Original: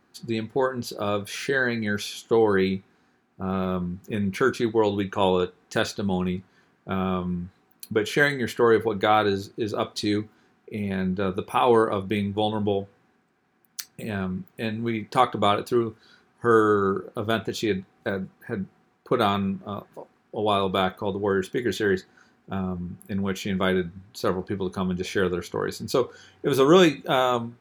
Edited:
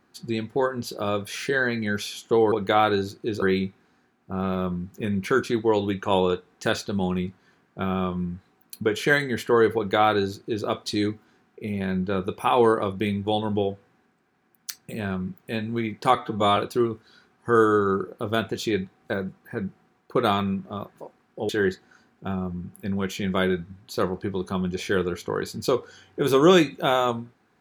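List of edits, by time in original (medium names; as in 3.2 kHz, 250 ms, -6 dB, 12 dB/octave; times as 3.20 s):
8.86–9.76 s: copy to 2.52 s
15.25–15.53 s: stretch 1.5×
20.45–21.75 s: delete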